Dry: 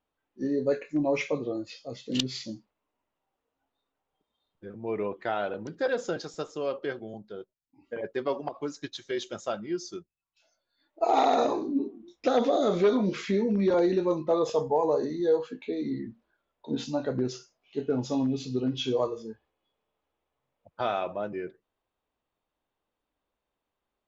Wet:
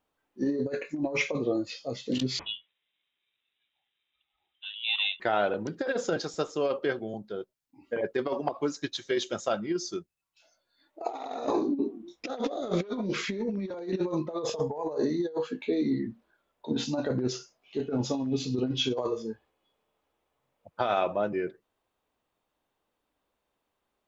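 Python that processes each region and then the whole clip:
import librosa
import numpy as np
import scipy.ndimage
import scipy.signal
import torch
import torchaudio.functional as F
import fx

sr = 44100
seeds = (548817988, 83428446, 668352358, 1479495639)

y = fx.chain(x, sr, fx.ring_mod(carrier_hz=660.0),
    fx.freq_invert(carrier_hz=3800), at=(2.39, 5.2))
y = fx.low_shelf(y, sr, hz=67.0, db=-6.0)
y = fx.over_compress(y, sr, threshold_db=-29.0, ratio=-0.5)
y = F.gain(torch.from_numpy(y), 1.5).numpy()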